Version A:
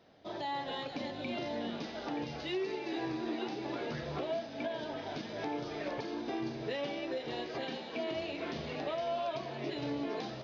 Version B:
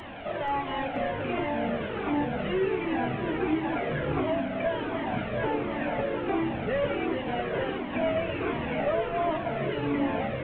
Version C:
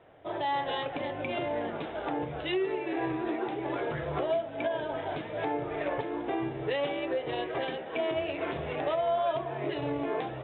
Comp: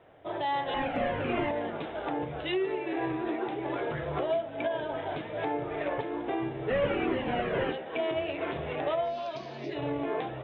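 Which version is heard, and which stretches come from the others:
C
0.74–1.51 s: from B
6.70–7.72 s: from B
9.10–9.71 s: from A, crossfade 0.16 s

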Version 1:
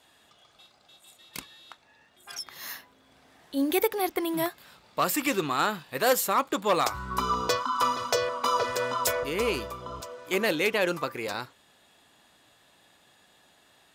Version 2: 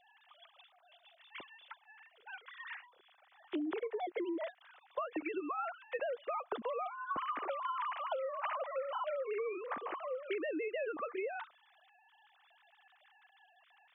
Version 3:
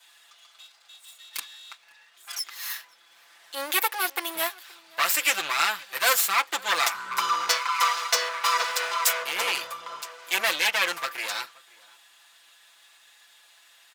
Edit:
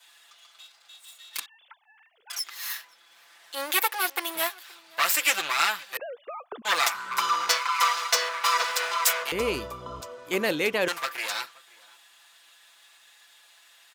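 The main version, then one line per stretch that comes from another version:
3
1.46–2.30 s: from 2
5.97–6.65 s: from 2
9.32–10.88 s: from 1

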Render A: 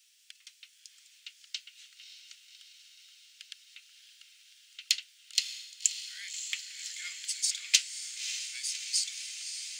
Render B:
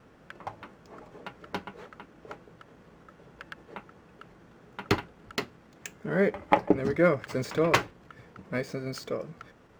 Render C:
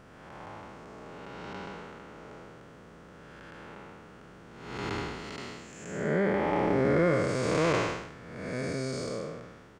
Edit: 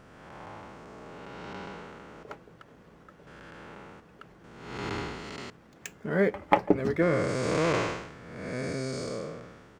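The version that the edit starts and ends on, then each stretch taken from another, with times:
C
2.23–3.27 s: from B
4.00–4.44 s: from B
5.50–7.02 s: from B
not used: A

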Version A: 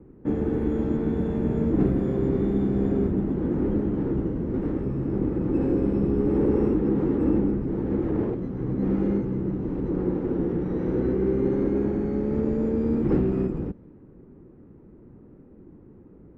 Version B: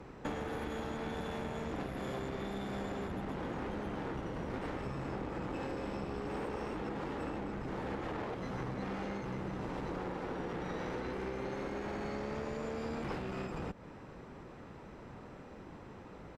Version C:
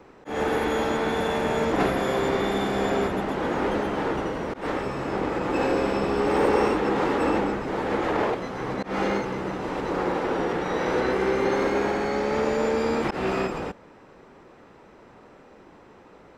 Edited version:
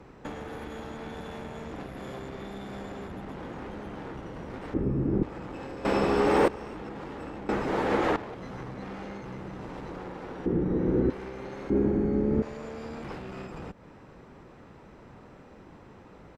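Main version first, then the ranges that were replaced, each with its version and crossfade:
B
4.74–5.23 s: from A
5.85–6.48 s: from C
7.49–8.16 s: from C
10.46–11.10 s: from A
11.70–12.42 s: from A

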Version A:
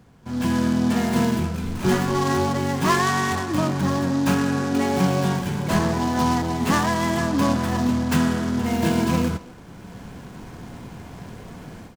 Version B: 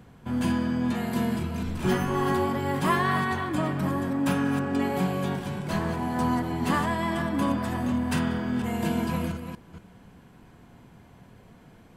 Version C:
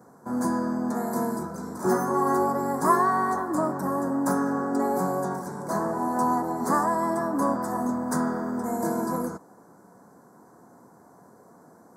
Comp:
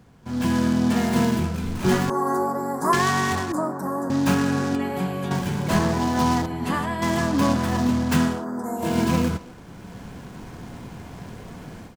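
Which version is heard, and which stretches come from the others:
A
2.10–2.93 s: from C
3.52–4.10 s: from C
4.75–5.31 s: from B
6.46–7.02 s: from B
8.35–8.87 s: from C, crossfade 0.24 s

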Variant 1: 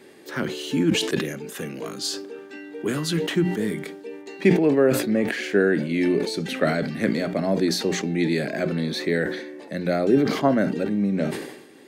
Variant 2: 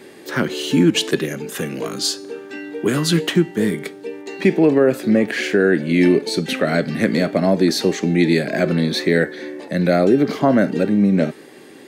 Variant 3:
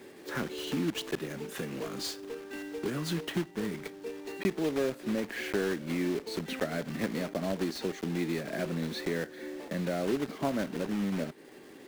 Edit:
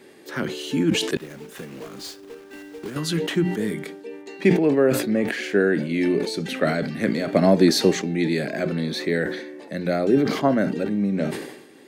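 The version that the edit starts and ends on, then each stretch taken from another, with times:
1
1.17–2.96 s: from 3
7.28–7.96 s: from 2

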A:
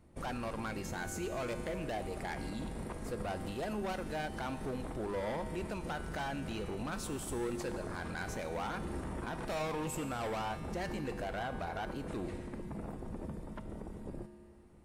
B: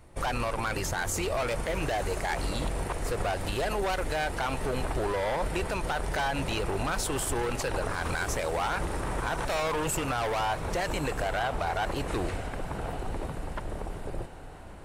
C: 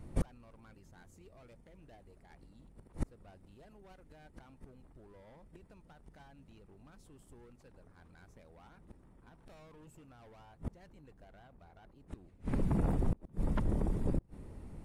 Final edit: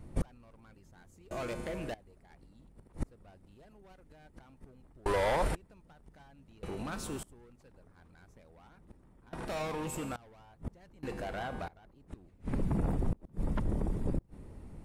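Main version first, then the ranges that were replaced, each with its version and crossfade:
C
1.31–1.94 s: from A
5.06–5.55 s: from B
6.63–7.23 s: from A
9.33–10.16 s: from A
11.03–11.68 s: from A

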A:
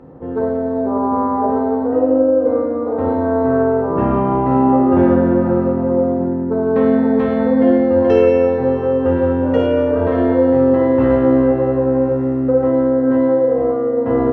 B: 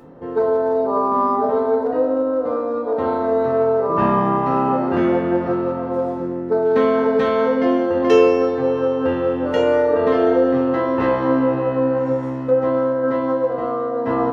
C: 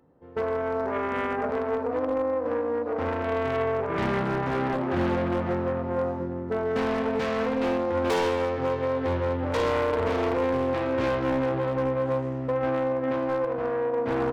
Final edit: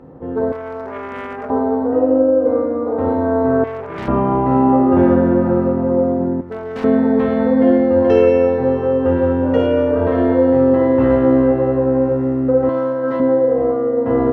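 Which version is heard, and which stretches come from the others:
A
0.52–1.50 s: from C
3.64–4.08 s: from C
6.41–6.84 s: from C
12.69–13.20 s: from B

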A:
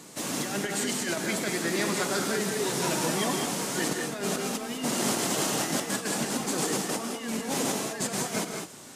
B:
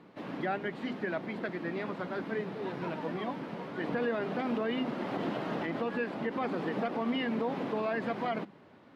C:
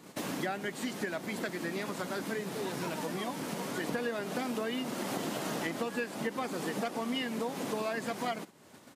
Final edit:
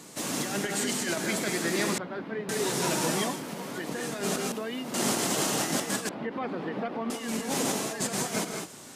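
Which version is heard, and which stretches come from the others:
A
1.98–2.49 s: from B
3.31–3.99 s: from C, crossfade 0.24 s
4.52–4.94 s: from C
6.09–7.10 s: from B

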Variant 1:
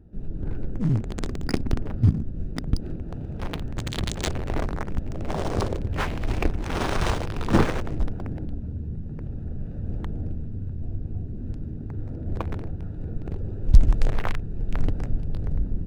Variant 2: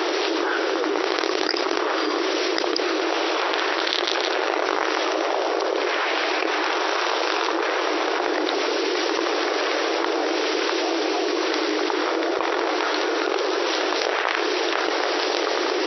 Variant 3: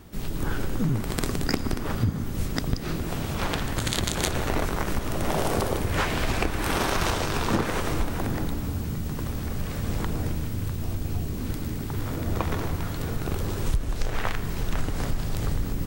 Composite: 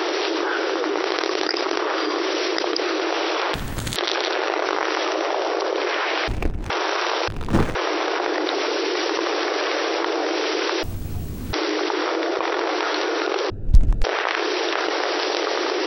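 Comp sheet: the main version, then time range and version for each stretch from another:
2
3.54–3.96 s: from 3
6.28–6.70 s: from 1
7.28–7.75 s: from 1
10.83–11.53 s: from 3
13.50–14.04 s: from 1

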